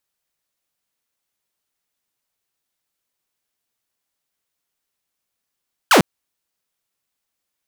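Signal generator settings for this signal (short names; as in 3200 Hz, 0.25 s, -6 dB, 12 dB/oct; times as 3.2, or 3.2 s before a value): laser zap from 1700 Hz, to 140 Hz, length 0.10 s saw, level -6 dB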